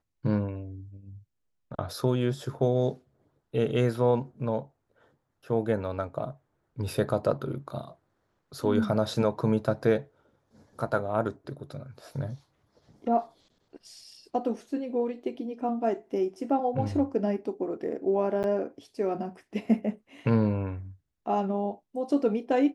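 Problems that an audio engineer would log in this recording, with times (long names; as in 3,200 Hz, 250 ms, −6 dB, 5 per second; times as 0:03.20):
0:18.43–0:18.44: drop-out 9.6 ms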